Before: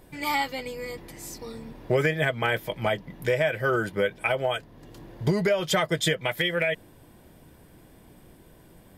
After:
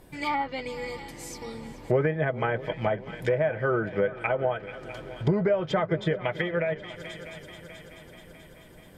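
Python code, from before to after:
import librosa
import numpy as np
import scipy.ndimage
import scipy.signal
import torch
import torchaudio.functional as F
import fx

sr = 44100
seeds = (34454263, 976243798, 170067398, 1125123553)

y = fx.echo_heads(x, sr, ms=216, heads='second and third', feedback_pct=58, wet_db=-18.5)
y = fx.env_lowpass_down(y, sr, base_hz=1300.0, full_db=-21.5)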